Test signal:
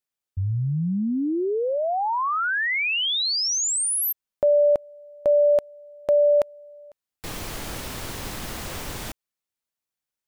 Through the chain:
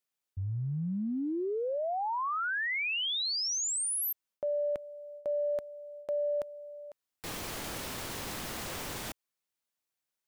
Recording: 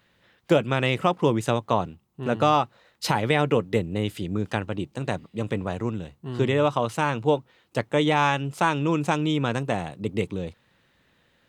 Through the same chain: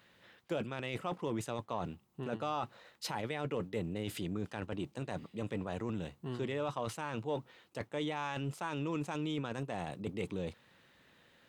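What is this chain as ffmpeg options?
-af "lowshelf=f=93:g=-10,areverse,acompressor=threshold=-32dB:ratio=4:attack=0.22:release=75:knee=6:detection=rms,areverse"

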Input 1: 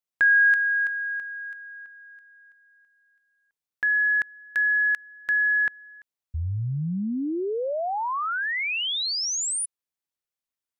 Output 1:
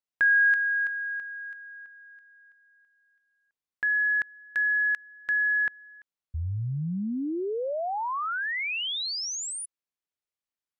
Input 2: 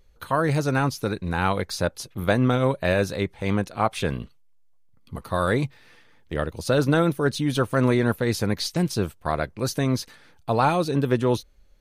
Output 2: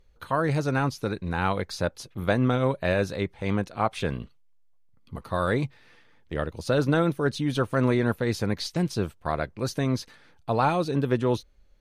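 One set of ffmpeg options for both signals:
-af "highshelf=f=8.7k:g=-10,volume=-2.5dB"

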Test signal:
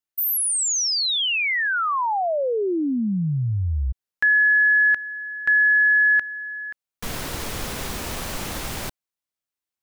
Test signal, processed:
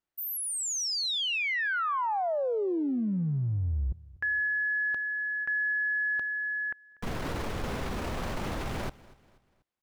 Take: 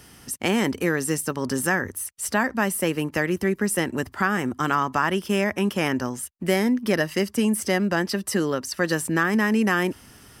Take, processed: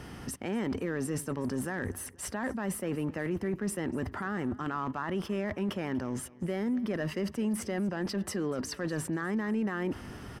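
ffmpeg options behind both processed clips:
-af "lowpass=f=1.3k:p=1,areverse,acompressor=threshold=-36dB:ratio=6:attack=0.2:release=37:knee=6:detection=rms,areverse,aecho=1:1:242|484|726:0.0841|0.0353|0.0148,volume=7.5dB"

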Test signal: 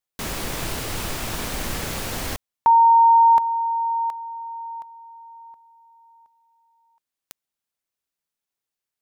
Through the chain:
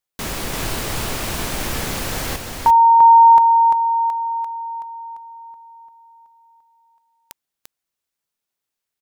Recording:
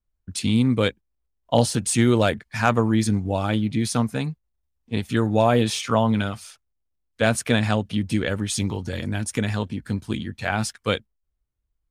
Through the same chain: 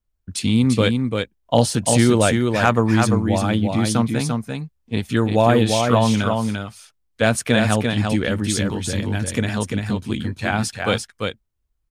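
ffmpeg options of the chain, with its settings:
-af "aecho=1:1:344:0.596,volume=2.5dB"

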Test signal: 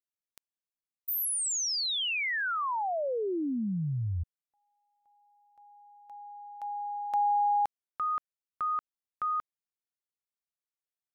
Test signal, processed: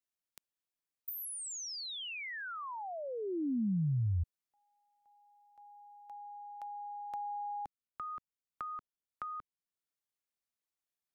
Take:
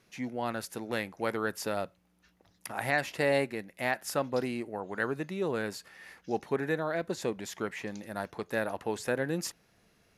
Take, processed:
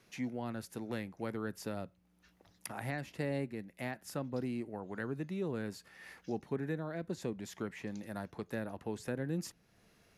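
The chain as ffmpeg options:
-filter_complex "[0:a]acrossover=split=300[a][b];[b]acompressor=threshold=-47dB:ratio=2.5:attack=27:release=791:knee=2.83:detection=peak[c];[a][c]amix=inputs=2:normalize=0"

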